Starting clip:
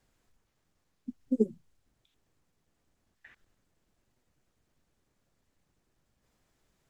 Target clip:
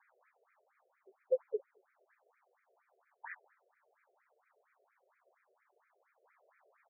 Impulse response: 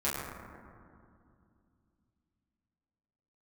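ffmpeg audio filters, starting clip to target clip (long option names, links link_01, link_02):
-filter_complex "[0:a]asplit=2[link_01][link_02];[link_02]asetrate=22050,aresample=44100,atempo=2,volume=-8dB[link_03];[link_01][link_03]amix=inputs=2:normalize=0,asplit=2[link_04][link_05];[link_05]adelay=68,lowpass=frequency=2000:poles=1,volume=-14dB,asplit=2[link_06][link_07];[link_07]adelay=68,lowpass=frequency=2000:poles=1,volume=0.51,asplit=2[link_08][link_09];[link_09]adelay=68,lowpass=frequency=2000:poles=1,volume=0.51,asplit=2[link_10][link_11];[link_11]adelay=68,lowpass=frequency=2000:poles=1,volume=0.51,asplit=2[link_12][link_13];[link_13]adelay=68,lowpass=frequency=2000:poles=1,volume=0.51[link_14];[link_04][link_06][link_08][link_10][link_12][link_14]amix=inputs=6:normalize=0,afftfilt=real='re*between(b*sr/1024,490*pow(1800/490,0.5+0.5*sin(2*PI*4.3*pts/sr))/1.41,490*pow(1800/490,0.5+0.5*sin(2*PI*4.3*pts/sr))*1.41)':imag='im*between(b*sr/1024,490*pow(1800/490,0.5+0.5*sin(2*PI*4.3*pts/sr))/1.41,490*pow(1800/490,0.5+0.5*sin(2*PI*4.3*pts/sr))*1.41)':win_size=1024:overlap=0.75,volume=13dB"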